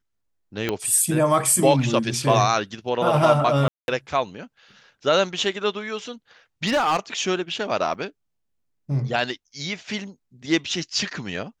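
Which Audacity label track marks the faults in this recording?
0.690000	0.690000	pop -9 dBFS
3.680000	3.880000	gap 0.201 s
6.660000	6.990000	clipped -16.5 dBFS
7.940000	7.940000	gap 4.1 ms

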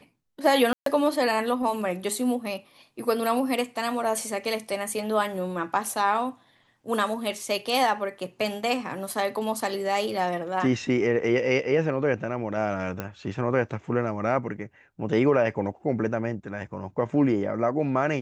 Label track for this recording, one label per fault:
0.730000	0.860000	gap 0.133 s
13.000000	13.000000	pop -16 dBFS

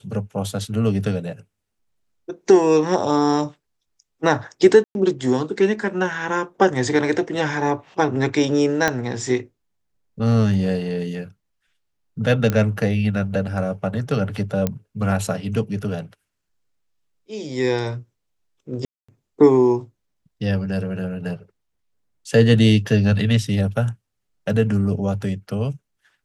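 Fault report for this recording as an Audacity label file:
4.840000	4.950000	gap 0.111 s
8.880000	8.880000	pop -5 dBFS
12.500000	12.500000	pop -8 dBFS
14.670000	14.670000	pop -8 dBFS
18.850000	19.090000	gap 0.235 s

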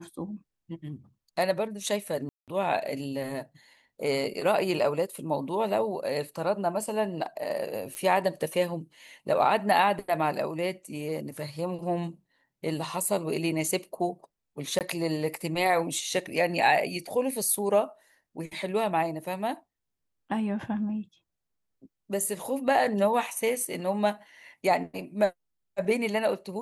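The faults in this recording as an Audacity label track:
2.290000	2.480000	gap 0.187 s
7.950000	7.950000	pop -21 dBFS
14.790000	14.810000	gap 18 ms

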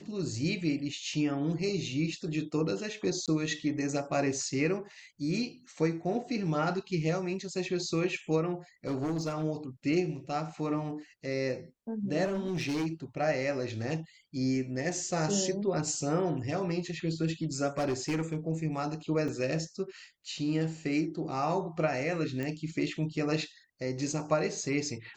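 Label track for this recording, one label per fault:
3.260000	3.280000	gap 17 ms
8.870000	9.440000	clipped -28 dBFS
12.240000	12.870000	clipped -28 dBFS
17.780000	18.360000	clipped -26 dBFS
19.280000	19.280000	gap 3.4 ms
22.430000	22.430000	pop -23 dBFS

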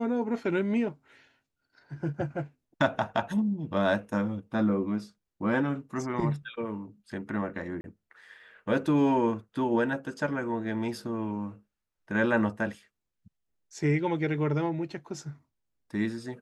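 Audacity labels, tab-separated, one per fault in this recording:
7.810000	7.840000	gap 31 ms

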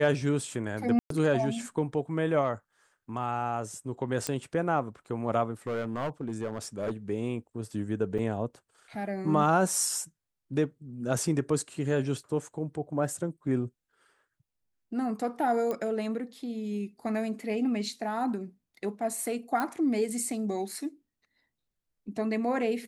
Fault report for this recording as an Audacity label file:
0.990000	1.100000	gap 0.113 s
4.270000	4.270000	pop -14 dBFS
5.670000	6.910000	clipped -27.5 dBFS
8.180000	8.190000	gap 5.2 ms
15.710000	15.710000	pop -20 dBFS
19.600000	19.600000	pop -17 dBFS

